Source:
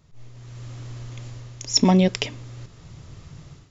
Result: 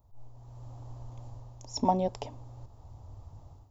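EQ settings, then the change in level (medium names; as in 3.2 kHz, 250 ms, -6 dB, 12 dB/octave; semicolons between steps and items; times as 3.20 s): FFT filter 100 Hz 0 dB, 160 Hz -17 dB, 250 Hz -6 dB, 380 Hz -10 dB, 860 Hz +5 dB, 1.4 kHz -16 dB, 2.1 kHz -23 dB, 4.8 kHz -16 dB, 7.2 kHz -15 dB, 12 kHz +10 dB; -2.5 dB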